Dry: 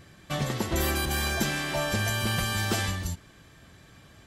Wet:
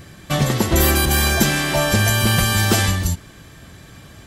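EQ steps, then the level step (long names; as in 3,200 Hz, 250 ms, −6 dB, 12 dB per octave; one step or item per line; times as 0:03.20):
low-shelf EQ 390 Hz +3 dB
high-shelf EQ 8,100 Hz +6.5 dB
+9.0 dB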